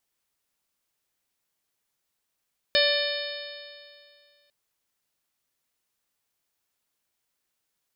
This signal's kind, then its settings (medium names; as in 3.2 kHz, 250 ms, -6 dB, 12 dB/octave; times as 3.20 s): stretched partials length 1.75 s, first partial 577 Hz, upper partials -18.5/-3/-7/-5.5/-0.5/-3/-6 dB, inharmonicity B 0.0035, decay 2.22 s, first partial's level -22 dB